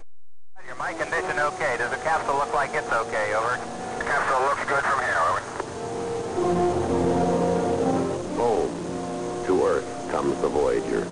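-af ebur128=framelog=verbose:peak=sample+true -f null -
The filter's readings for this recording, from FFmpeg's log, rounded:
Integrated loudness:
  I:         -24.6 LUFS
  Threshold: -34.8 LUFS
Loudness range:
  LRA:         1.2 LU
  Threshold: -44.6 LUFS
  LRA low:   -25.2 LUFS
  LRA high:  -24.0 LUFS
Sample peak:
  Peak:      -10.4 dBFS
True peak:
  Peak:      -10.4 dBFS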